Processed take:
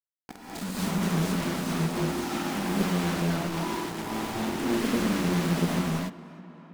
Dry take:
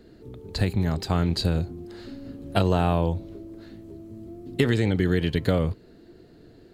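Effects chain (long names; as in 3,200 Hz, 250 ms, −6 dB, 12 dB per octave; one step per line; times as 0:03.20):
delay that plays each chunk backwards 153 ms, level −6.5 dB
Butterworth high-pass 160 Hz 72 dB per octave
parametric band 560 Hz −5 dB 0.43 octaves
harmonic and percussive parts rebalanced percussive −14 dB
graphic EQ with 10 bands 250 Hz +10 dB, 500 Hz −8 dB, 1,000 Hz −9 dB, 2,000 Hz −4 dB, 4,000 Hz −7 dB, 8,000 Hz +11 dB
downward compressor 3 to 1, threshold −35 dBFS, peak gain reduction 13.5 dB
bit-depth reduction 6 bits, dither none
on a send: tape delay 314 ms, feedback 83%, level −17 dB, low-pass 2,700 Hz
on the sum: reverb whose tail is shaped and stops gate 290 ms rising, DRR −7 dB
highs frequency-modulated by the lows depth 0.67 ms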